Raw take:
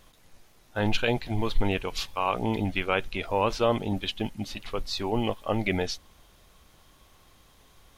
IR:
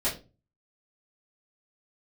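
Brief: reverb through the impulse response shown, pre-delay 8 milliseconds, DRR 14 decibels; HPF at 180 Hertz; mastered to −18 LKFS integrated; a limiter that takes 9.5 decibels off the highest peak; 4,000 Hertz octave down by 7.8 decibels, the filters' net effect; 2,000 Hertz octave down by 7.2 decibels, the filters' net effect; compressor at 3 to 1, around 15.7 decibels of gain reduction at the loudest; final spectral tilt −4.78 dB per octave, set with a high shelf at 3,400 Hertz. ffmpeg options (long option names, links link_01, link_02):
-filter_complex "[0:a]highpass=180,equalizer=frequency=2000:width_type=o:gain=-6,highshelf=frequency=3400:gain=-6.5,equalizer=frequency=4000:width_type=o:gain=-3.5,acompressor=threshold=-42dB:ratio=3,alimiter=level_in=11dB:limit=-24dB:level=0:latency=1,volume=-11dB,asplit=2[link_01][link_02];[1:a]atrim=start_sample=2205,adelay=8[link_03];[link_02][link_03]afir=irnorm=-1:irlink=0,volume=-23dB[link_04];[link_01][link_04]amix=inputs=2:normalize=0,volume=29dB"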